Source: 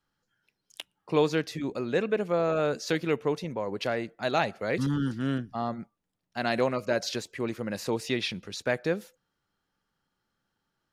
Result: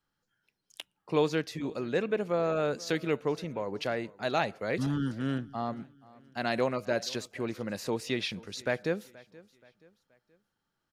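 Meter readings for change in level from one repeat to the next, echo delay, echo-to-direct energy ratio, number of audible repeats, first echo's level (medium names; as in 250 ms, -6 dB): -7.5 dB, 477 ms, -21.5 dB, 2, -22.5 dB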